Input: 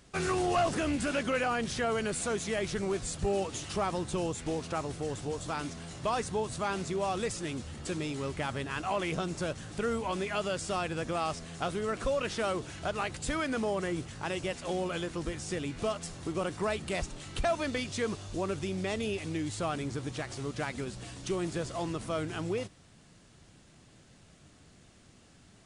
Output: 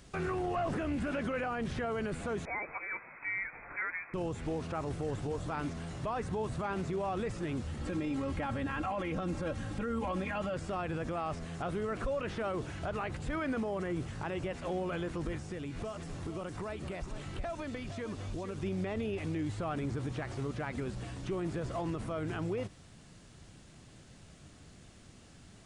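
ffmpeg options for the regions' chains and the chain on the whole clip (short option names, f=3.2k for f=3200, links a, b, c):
-filter_complex "[0:a]asettb=1/sr,asplit=3[a][b][c];[a]atrim=end=2.454[d];[b]atrim=start=2.45:end=4.14,asetpts=PTS-STARTPTS,afade=t=in:d=0.004:c=qsin,afade=t=out:st=1.686:d=0.004:c=qsin,highpass=560,lowpass=f=2.3k:t=q:w=0.5098,lowpass=f=2.3k:t=q:w=0.6013,lowpass=f=2.3k:t=q:w=0.9,lowpass=f=2.3k:t=q:w=2.563,afreqshift=-2700[e];[c]atrim=start=4.136[f];[d][e]acrossfade=d=0.004:c1=hsin:c2=qsin[g];[g][f]acrossfade=d=0.004:c1=qsin:c2=hsin,asettb=1/sr,asplit=3[h][i][j];[h]atrim=end=7.814[k];[i]atrim=start=7.81:end=10.54,asetpts=PTS-STARTPTS,afade=t=in:d=0.004:c=qsin,afade=t=out:st=2.726:d=0.004:c=qsin,equalizer=f=120:t=o:w=0.7:g=8.5,aecho=1:1:3.7:0.74,atrim=end_sample=120393[l];[j]atrim=start=10.536[m];[k][l]acrossfade=d=0.004:c1=hsin:c2=qsin[n];[n][m]acrossfade=d=0.004:c1=qsin:c2=hsin,asettb=1/sr,asplit=3[o][p][q];[o]atrim=end=15.364[r];[p]atrim=start=15.36:end=18.63,asetpts=PTS-STARTPTS,afade=t=in:d=0.004:c=qsin,afade=t=out:st=3.266:d=0.004:c=qsin,acompressor=threshold=-39dB:ratio=4:attack=3.2:release=140:knee=1:detection=peak,aecho=1:1:460:0.282,atrim=end_sample=144207[s];[q]atrim=start=18.626[t];[r][s]acrossfade=d=0.004:c1=hsin:c2=qsin[u];[u][t]acrossfade=d=0.004:c1=qsin:c2=hsin,acrossover=split=2500[v][w];[w]acompressor=threshold=-57dB:ratio=4:attack=1:release=60[x];[v][x]amix=inputs=2:normalize=0,lowshelf=f=120:g=4.5,alimiter=level_in=4.5dB:limit=-24dB:level=0:latency=1:release=30,volume=-4.5dB,volume=1.5dB"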